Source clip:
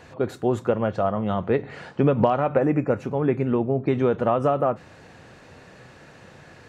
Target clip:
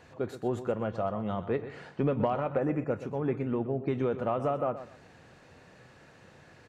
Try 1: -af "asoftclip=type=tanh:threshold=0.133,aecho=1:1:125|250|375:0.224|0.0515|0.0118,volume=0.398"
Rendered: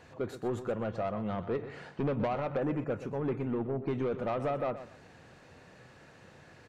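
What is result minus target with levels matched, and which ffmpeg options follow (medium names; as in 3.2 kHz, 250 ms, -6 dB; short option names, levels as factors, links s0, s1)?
saturation: distortion +15 dB
-af "asoftclip=type=tanh:threshold=0.473,aecho=1:1:125|250|375:0.224|0.0515|0.0118,volume=0.398"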